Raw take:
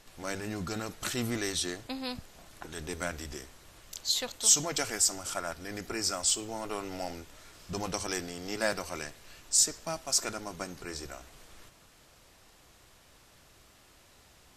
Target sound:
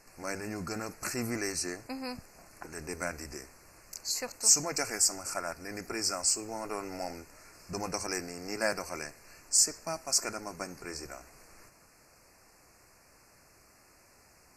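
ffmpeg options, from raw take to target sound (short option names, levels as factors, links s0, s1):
-af "asuperstop=centerf=3400:order=8:qfactor=1.9,lowshelf=f=140:g=-6"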